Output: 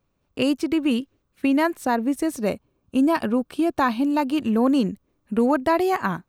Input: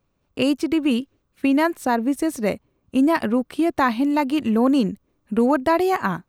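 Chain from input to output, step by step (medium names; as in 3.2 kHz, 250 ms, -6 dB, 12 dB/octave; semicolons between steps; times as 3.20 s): 2.35–4.53 s: band-stop 2 kHz, Q 6.3; trim -1.5 dB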